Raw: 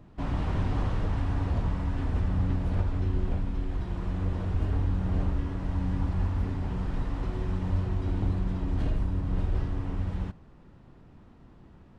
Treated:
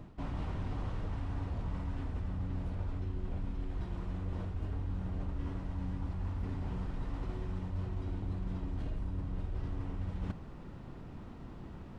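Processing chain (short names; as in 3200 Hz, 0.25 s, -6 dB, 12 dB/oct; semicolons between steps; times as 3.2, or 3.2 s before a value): notch 1700 Hz, Q 27; reverse; compressor 8:1, threshold -40 dBFS, peak gain reduction 18.5 dB; reverse; gain +6 dB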